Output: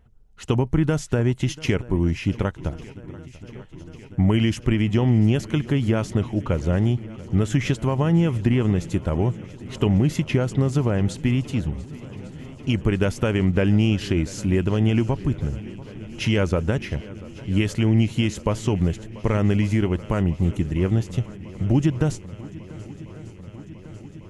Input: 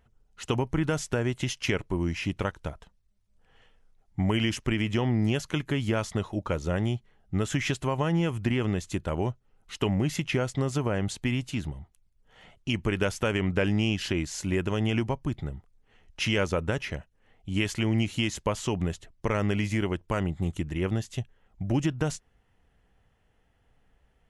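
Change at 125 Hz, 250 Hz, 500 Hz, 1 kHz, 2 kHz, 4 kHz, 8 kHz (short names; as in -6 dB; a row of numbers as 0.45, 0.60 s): +8.5, +7.0, +4.5, +2.0, +0.5, +0.5, 0.0 dB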